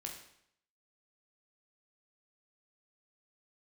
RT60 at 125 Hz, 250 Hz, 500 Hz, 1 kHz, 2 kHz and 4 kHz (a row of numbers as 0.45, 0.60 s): 0.75, 0.70, 0.70, 0.70, 0.70, 0.65 s